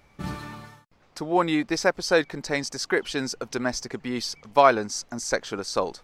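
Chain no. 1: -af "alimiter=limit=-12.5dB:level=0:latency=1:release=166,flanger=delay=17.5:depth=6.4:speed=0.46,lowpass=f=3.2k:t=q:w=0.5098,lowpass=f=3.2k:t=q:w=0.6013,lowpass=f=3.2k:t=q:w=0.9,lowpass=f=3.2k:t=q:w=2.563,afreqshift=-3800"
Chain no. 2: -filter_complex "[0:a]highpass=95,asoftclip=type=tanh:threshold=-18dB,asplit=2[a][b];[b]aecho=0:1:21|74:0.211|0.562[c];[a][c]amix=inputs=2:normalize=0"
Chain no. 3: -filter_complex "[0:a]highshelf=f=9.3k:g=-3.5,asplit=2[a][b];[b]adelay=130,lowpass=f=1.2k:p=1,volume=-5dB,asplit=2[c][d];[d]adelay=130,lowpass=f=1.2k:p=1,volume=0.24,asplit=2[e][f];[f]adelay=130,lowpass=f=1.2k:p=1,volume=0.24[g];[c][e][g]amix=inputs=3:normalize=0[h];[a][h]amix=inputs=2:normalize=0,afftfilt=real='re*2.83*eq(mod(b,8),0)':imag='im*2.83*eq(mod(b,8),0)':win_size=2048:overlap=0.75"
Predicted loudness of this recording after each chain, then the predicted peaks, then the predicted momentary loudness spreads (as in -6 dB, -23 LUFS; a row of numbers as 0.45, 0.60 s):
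-29.0, -27.5, -25.5 LUFS; -11.0, -13.0, -6.0 dBFS; 11, 11, 17 LU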